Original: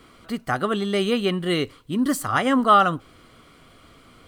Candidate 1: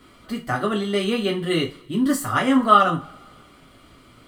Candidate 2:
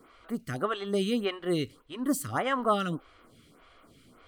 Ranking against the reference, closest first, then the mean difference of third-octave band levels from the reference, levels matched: 1, 2; 2.5 dB, 4.0 dB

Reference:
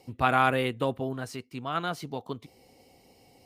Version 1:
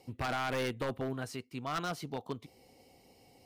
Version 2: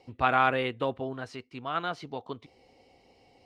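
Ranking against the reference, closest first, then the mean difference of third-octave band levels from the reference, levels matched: 2, 1; 3.0 dB, 5.0 dB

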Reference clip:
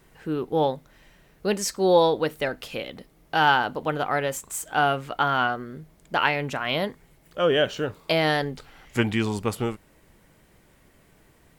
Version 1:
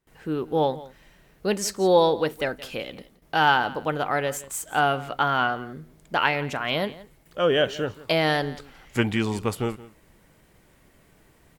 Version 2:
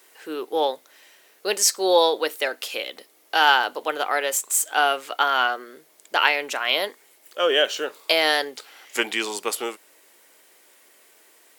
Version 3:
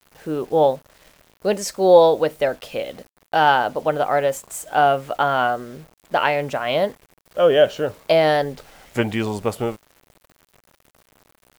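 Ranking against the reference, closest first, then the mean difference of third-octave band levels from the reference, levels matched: 1, 3, 2; 1.0 dB, 4.0 dB, 8.0 dB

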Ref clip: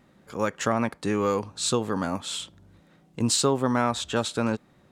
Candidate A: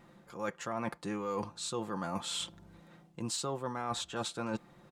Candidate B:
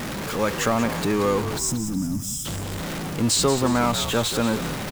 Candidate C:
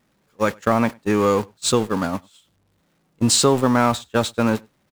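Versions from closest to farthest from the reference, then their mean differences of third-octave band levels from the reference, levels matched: A, C, B; 4.5 dB, 6.5 dB, 14.0 dB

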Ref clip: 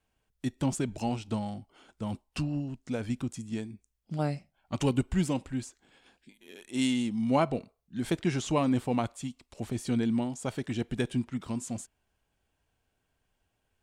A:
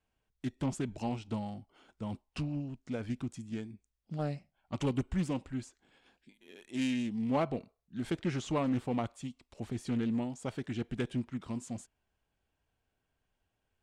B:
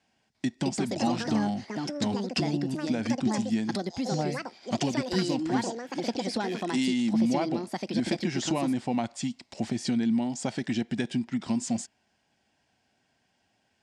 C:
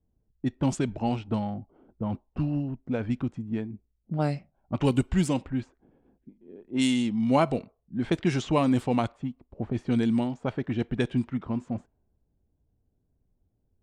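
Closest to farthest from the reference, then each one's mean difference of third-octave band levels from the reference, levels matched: A, C, B; 1.5 dB, 3.5 dB, 7.0 dB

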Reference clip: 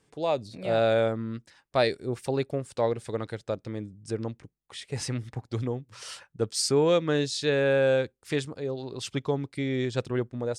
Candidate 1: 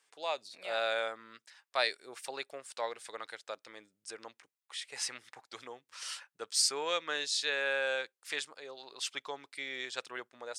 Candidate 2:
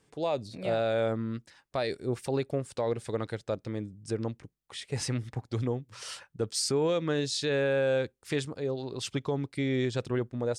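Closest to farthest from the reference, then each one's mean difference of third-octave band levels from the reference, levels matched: 2, 1; 2.0 dB, 9.0 dB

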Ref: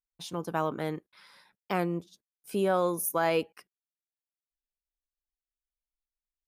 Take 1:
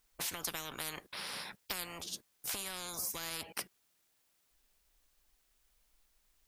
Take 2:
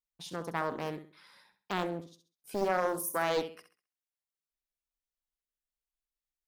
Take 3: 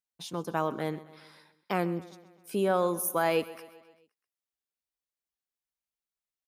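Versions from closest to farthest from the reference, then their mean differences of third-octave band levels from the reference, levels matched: 3, 2, 1; 3.0 dB, 5.0 dB, 17.0 dB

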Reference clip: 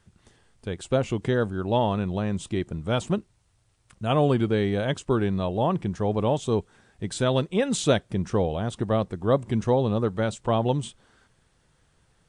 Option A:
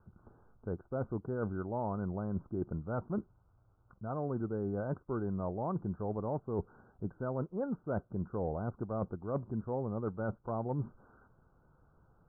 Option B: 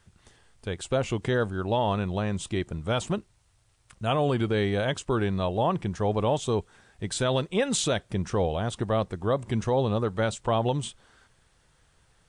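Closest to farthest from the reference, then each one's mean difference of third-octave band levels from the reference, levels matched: B, A; 2.5 dB, 7.5 dB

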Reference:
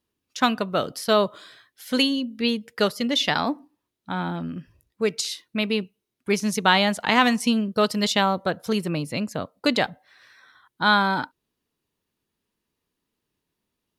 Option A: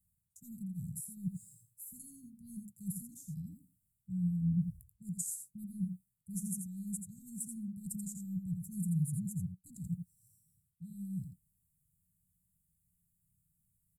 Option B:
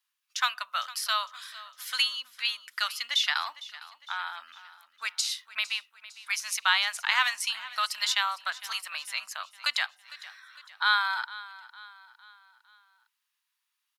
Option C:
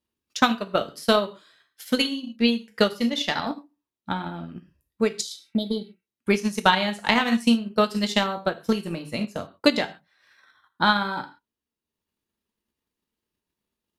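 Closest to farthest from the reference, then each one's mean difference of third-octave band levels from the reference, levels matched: C, B, A; 4.0 dB, 14.0 dB, 20.5 dB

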